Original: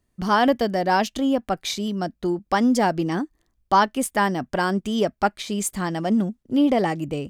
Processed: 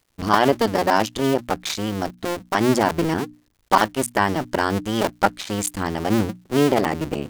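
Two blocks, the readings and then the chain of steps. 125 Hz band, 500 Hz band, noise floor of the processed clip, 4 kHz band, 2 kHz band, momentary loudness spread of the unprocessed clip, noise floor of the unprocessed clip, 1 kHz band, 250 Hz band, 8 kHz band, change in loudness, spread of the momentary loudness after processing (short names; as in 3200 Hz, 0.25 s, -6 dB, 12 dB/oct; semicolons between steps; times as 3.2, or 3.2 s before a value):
+3.0 dB, +2.5 dB, -63 dBFS, +2.0 dB, +2.0 dB, 7 LU, -72 dBFS, +1.0 dB, -1.0 dB, +2.0 dB, +1.0 dB, 7 LU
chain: cycle switcher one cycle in 2, muted; notches 60/120/180/240/300 Hz; crackle 220/s -55 dBFS; gain +4 dB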